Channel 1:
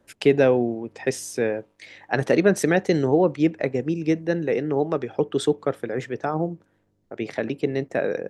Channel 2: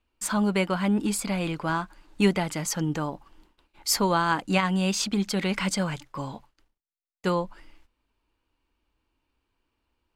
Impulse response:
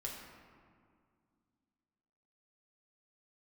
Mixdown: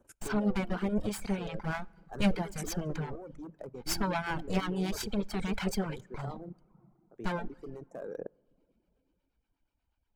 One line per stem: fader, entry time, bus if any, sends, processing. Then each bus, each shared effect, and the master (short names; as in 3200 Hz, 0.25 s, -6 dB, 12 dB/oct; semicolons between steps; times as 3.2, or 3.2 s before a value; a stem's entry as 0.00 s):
-1.5 dB, 0.00 s, send -20 dB, hard clip -17.5 dBFS, distortion -10 dB; band shelf 3000 Hz -15.5 dB; level quantiser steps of 16 dB; auto duck -10 dB, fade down 0.35 s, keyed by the second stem
-4.5 dB, 0.00 s, send -10.5 dB, minimum comb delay 1.3 ms; tilt -1.5 dB/oct; harmonic tremolo 8.3 Hz, depth 50%, crossover 670 Hz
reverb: on, RT60 2.1 s, pre-delay 3 ms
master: reverb removal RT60 0.7 s